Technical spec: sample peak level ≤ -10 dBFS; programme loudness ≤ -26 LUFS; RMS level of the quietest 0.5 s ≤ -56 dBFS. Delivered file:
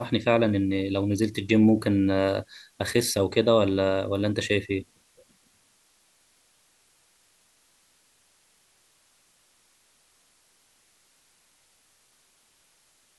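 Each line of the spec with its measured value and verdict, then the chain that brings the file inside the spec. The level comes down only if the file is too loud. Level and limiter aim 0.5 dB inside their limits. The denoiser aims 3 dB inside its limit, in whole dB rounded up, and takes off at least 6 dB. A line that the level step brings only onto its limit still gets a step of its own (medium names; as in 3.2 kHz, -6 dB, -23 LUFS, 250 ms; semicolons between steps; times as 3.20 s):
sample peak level -6.5 dBFS: fail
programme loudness -24.0 LUFS: fail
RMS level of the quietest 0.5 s -64 dBFS: pass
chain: trim -2.5 dB; peak limiter -10.5 dBFS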